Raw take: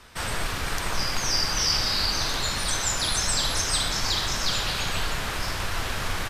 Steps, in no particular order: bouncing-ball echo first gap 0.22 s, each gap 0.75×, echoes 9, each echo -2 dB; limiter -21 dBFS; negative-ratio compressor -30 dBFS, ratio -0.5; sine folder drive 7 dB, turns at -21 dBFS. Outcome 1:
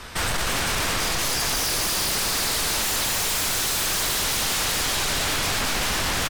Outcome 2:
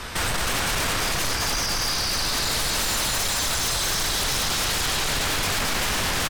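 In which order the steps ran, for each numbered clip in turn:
limiter > negative-ratio compressor > bouncing-ball echo > sine folder; negative-ratio compressor > limiter > bouncing-ball echo > sine folder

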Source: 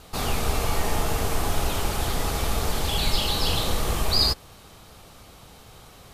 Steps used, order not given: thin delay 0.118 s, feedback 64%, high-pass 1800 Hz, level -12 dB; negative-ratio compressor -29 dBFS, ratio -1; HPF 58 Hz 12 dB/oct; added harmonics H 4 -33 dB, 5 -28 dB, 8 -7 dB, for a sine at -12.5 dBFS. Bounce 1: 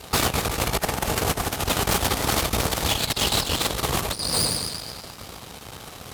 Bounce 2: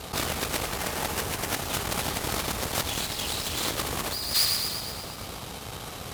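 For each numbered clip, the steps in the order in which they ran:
thin delay > negative-ratio compressor > added harmonics > HPF; added harmonics > thin delay > negative-ratio compressor > HPF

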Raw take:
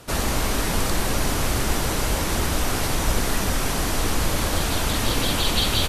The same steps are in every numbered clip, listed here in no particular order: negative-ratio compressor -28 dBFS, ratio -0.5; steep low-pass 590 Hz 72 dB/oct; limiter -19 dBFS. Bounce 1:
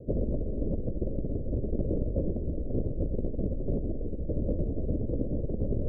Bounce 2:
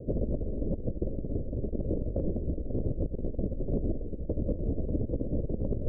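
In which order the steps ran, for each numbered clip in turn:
steep low-pass > limiter > negative-ratio compressor; steep low-pass > negative-ratio compressor > limiter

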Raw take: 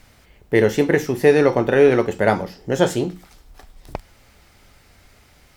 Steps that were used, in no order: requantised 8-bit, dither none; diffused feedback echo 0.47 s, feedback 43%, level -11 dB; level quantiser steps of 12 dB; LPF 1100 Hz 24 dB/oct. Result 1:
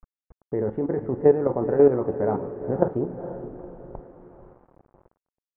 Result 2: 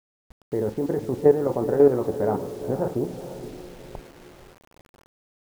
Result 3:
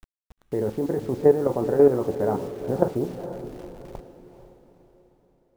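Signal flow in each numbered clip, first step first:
level quantiser > diffused feedback echo > requantised > LPF; LPF > level quantiser > diffused feedback echo > requantised; level quantiser > LPF > requantised > diffused feedback echo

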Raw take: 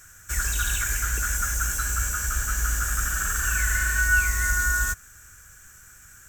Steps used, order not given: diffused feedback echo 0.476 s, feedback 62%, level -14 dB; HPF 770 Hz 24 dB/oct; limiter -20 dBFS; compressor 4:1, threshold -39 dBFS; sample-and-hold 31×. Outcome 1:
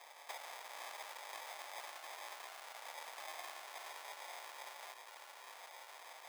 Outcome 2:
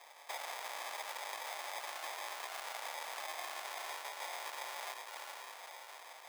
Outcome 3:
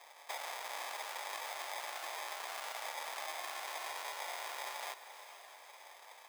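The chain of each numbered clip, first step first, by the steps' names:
diffused feedback echo > sample-and-hold > limiter > compressor > HPF; diffused feedback echo > limiter > sample-and-hold > HPF > compressor; sample-and-hold > limiter > HPF > compressor > diffused feedback echo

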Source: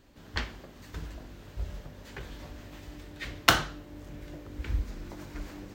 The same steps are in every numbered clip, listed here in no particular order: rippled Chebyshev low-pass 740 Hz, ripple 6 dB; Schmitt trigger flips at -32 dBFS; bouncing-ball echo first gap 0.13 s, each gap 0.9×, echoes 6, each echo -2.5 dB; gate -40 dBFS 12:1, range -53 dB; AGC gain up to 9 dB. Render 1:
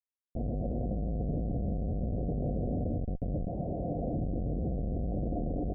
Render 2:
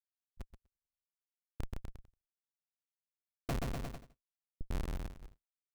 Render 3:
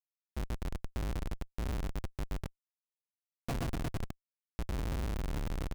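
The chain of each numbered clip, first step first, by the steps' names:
bouncing-ball echo > AGC > gate > Schmitt trigger > rippled Chebyshev low-pass; rippled Chebyshev low-pass > Schmitt trigger > AGC > bouncing-ball echo > gate; gate > bouncing-ball echo > AGC > rippled Chebyshev low-pass > Schmitt trigger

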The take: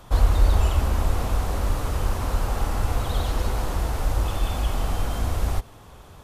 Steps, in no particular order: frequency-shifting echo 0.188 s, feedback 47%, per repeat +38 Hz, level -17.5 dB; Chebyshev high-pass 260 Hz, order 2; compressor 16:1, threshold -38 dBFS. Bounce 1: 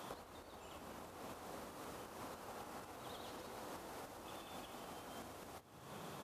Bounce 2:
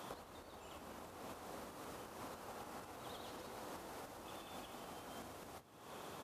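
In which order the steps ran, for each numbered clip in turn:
frequency-shifting echo > compressor > Chebyshev high-pass; compressor > frequency-shifting echo > Chebyshev high-pass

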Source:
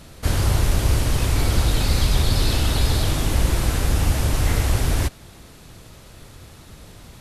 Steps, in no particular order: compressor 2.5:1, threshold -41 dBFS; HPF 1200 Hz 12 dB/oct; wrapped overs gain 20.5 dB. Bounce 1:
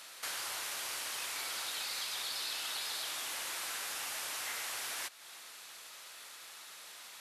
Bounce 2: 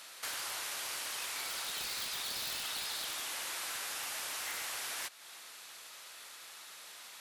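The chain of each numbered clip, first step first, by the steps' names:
HPF > compressor > wrapped overs; HPF > wrapped overs > compressor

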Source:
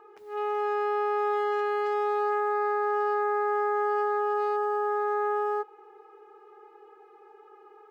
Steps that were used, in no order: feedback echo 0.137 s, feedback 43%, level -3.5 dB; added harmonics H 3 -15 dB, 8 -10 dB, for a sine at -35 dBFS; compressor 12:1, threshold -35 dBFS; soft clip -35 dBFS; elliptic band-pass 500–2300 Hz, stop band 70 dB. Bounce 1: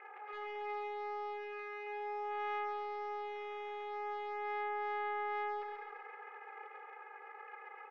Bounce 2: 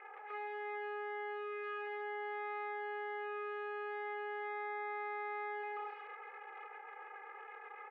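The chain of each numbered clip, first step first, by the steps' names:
added harmonics > compressor > elliptic band-pass > soft clip > feedback echo; feedback echo > soft clip > added harmonics > elliptic band-pass > compressor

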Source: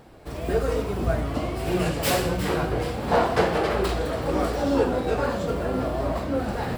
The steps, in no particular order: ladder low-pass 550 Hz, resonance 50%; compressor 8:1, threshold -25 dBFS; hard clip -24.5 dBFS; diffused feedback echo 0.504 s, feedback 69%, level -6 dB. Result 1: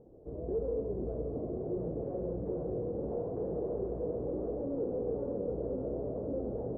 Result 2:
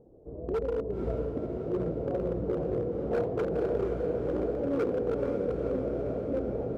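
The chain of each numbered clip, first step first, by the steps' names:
hard clip > diffused feedback echo > compressor > ladder low-pass; ladder low-pass > hard clip > compressor > diffused feedback echo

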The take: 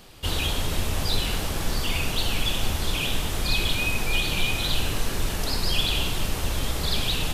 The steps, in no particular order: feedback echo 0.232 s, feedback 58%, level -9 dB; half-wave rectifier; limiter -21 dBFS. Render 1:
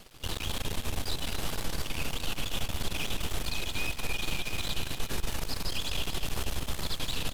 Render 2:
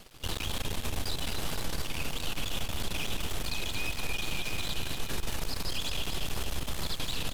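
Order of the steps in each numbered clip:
limiter > half-wave rectifier > feedback echo; half-wave rectifier > feedback echo > limiter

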